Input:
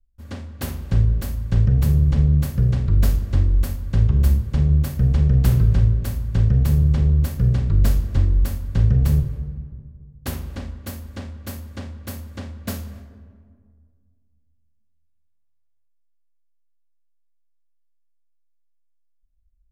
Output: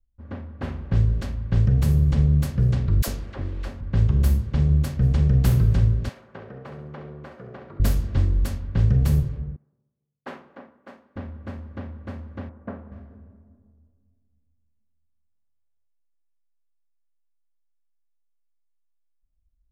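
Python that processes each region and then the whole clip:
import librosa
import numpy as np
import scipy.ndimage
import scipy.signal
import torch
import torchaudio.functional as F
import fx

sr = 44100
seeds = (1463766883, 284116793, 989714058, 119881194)

y = fx.chain(x, sr, fx.bass_treble(bass_db=-10, treble_db=5),
    fx.quant_dither(seeds[0], bits=8, dither='none'),
    fx.dispersion(late='lows', ms=56.0, hz=420.0), at=(3.02, 3.81))
y = fx.chain(y, sr, fx.highpass(hz=510.0, slope=12),
    fx.room_flutter(wall_m=11.6, rt60_s=0.48), at=(6.09, 7.8))
y = fx.chain(y, sr, fx.bessel_highpass(hz=270.0, order=4),
    fx.low_shelf(hz=390.0, db=-10.0),
    fx.band_widen(depth_pct=70), at=(9.56, 11.16))
y = fx.chain(y, sr, fx.lowpass(hz=1400.0, slope=12),
    fx.low_shelf(hz=160.0, db=-12.0), at=(12.49, 12.92))
y = fx.env_lowpass(y, sr, base_hz=1200.0, full_db=-11.5)
y = fx.low_shelf(y, sr, hz=69.0, db=-6.0)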